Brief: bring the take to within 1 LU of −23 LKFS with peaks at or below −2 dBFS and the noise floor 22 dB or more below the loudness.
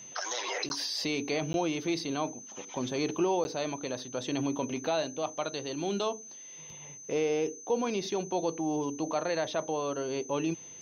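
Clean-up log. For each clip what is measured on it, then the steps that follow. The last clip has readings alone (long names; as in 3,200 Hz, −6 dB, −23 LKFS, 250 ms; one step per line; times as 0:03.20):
number of dropouts 3; longest dropout 11 ms; interfering tone 6,200 Hz; level of the tone −45 dBFS; integrated loudness −32.0 LKFS; sample peak −18.5 dBFS; target loudness −23.0 LKFS
→ repair the gap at 0:00.69/0:01.53/0:03.44, 11 ms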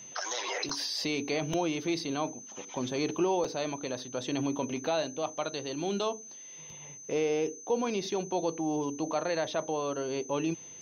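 number of dropouts 0; interfering tone 6,200 Hz; level of the tone −45 dBFS
→ notch filter 6,200 Hz, Q 30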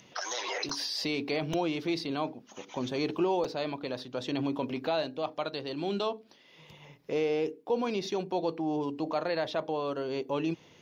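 interfering tone none found; integrated loudness −32.5 LKFS; sample peak −18.5 dBFS; target loudness −23.0 LKFS
→ level +9.5 dB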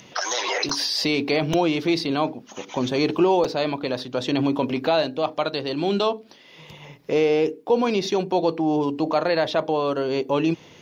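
integrated loudness −23.0 LKFS; sample peak −9.0 dBFS; background noise floor −49 dBFS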